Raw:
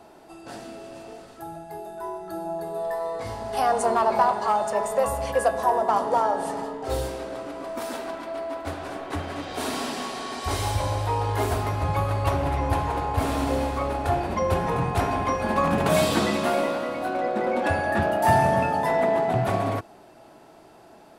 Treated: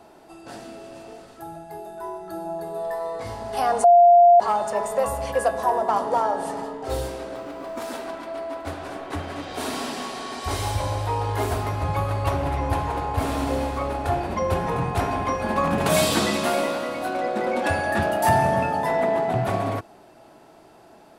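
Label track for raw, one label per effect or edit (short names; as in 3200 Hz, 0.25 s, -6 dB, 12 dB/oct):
3.840000	4.400000	bleep 697 Hz -9 dBFS
7.350000	7.880000	decimation joined by straight lines rate divided by 2×
15.810000	18.290000	bell 10000 Hz +6.5 dB 2.9 oct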